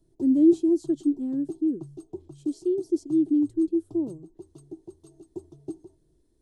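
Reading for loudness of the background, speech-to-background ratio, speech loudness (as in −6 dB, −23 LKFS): −44.0 LKFS, 19.0 dB, −25.0 LKFS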